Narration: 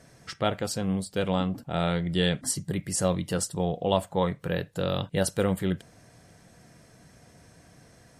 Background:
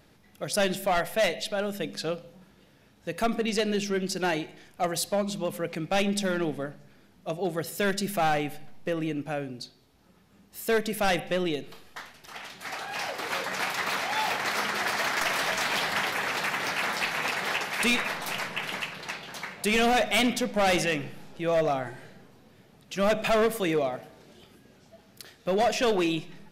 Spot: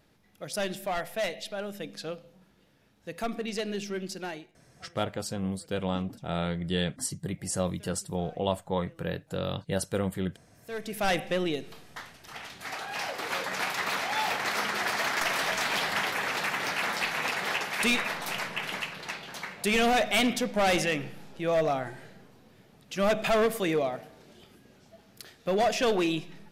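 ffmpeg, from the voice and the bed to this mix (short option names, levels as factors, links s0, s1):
-filter_complex "[0:a]adelay=4550,volume=0.631[s0];[1:a]volume=11.9,afade=t=out:st=4.05:d=0.58:silence=0.0749894,afade=t=in:st=10.62:d=0.5:silence=0.0421697[s1];[s0][s1]amix=inputs=2:normalize=0"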